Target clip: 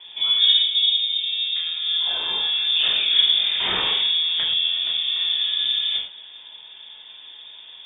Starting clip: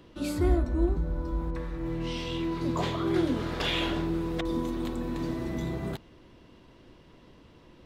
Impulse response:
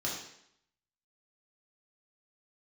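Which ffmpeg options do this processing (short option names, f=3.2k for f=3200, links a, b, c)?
-filter_complex "[0:a]asplit=2[a][b];[b]acompressor=threshold=-38dB:ratio=6,volume=0dB[c];[a][c]amix=inputs=2:normalize=0[d];[1:a]atrim=start_sample=2205,atrim=end_sample=6174[e];[d][e]afir=irnorm=-1:irlink=0,lowpass=f=3.1k:t=q:w=0.5098,lowpass=f=3.1k:t=q:w=0.6013,lowpass=f=3.1k:t=q:w=0.9,lowpass=f=3.1k:t=q:w=2.563,afreqshift=-3700"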